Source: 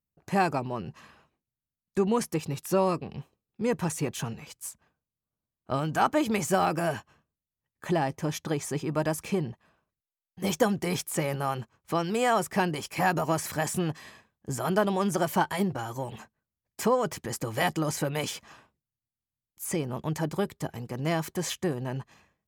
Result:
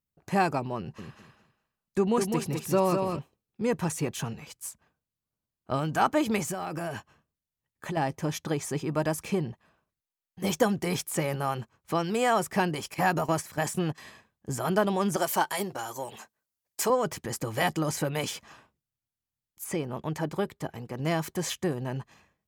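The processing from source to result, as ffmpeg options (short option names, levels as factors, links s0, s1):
-filter_complex "[0:a]asettb=1/sr,asplit=3[s0][s1][s2];[s0]atrim=end=0.784[s3];[s1]atrim=start=0.78:end=3.19,asetpts=PTS-STARTPTS,afade=t=in:d=0.004:c=qsin,afade=t=out:st=2.406:d=0.004:c=qsin,aecho=1:1:204|408|612:0.562|0.118|0.0248,atrim=end_sample=106281[s4];[s2]atrim=start=3.186[s5];[s3][s4]acrossfade=d=0.004:c1=hsin:c2=qsin[s6];[s6][s5]acrossfade=d=0.004:c1=qsin:c2=hsin,asettb=1/sr,asplit=3[s7][s8][s9];[s7]atrim=end=6.424[s10];[s8]atrim=start=6.42:end=7.97,asetpts=PTS-STARTPTS,afade=t=in:d=0.004:c=qsin,afade=t=out:st=1.546:d=0.004:c=qsin,acompressor=threshold=0.0355:ratio=12:attack=3.2:release=140:knee=1:detection=peak[s11];[s9]atrim=start=7.966[s12];[s10][s11]acrossfade=d=0.004:c1=hsin:c2=qsin[s13];[s13][s12]acrossfade=d=0.004:c1=qsin:c2=hsin,asettb=1/sr,asplit=3[s14][s15][s16];[s14]atrim=end=12.944[s17];[s15]atrim=start=12.94:end=13.98,asetpts=PTS-STARTPTS,afade=t=in:d=0.004:c=qsin,afade=t=out:st=1.036:d=0.004:c=qsin,agate=range=0.316:threshold=0.02:ratio=16:release=100:detection=peak[s18];[s16]atrim=start=13.976[s19];[s17][s18]acrossfade=d=0.004:c1=hsin:c2=qsin[s20];[s20][s19]acrossfade=d=0.004:c1=qsin:c2=hsin,asettb=1/sr,asplit=3[s21][s22][s23];[s21]atrim=end=15.164[s24];[s22]atrim=start=15.16:end=16.9,asetpts=PTS-STARTPTS,afade=t=in:d=0.004:c=qsin,afade=t=out:st=1.736:d=0.004:c=qsin,bass=f=250:g=-13,treble=f=4000:g=7[s25];[s23]atrim=start=16.896[s26];[s24][s25]acrossfade=d=0.004:c1=hsin:c2=qsin[s27];[s27][s26]acrossfade=d=0.004:c1=qsin:c2=hsin,asettb=1/sr,asplit=3[s28][s29][s30];[s28]atrim=end=19.644[s31];[s29]atrim=start=19.64:end=21,asetpts=PTS-STARTPTS,afade=t=in:d=0.004:c=qsin,afade=t=out:st=1.356:d=0.004:c=qsin,bass=f=250:g=-3,treble=f=4000:g=-5[s32];[s30]atrim=start=20.996[s33];[s31][s32]acrossfade=d=0.004:c1=hsin:c2=qsin[s34];[s34][s33]acrossfade=d=0.004:c1=qsin:c2=hsin"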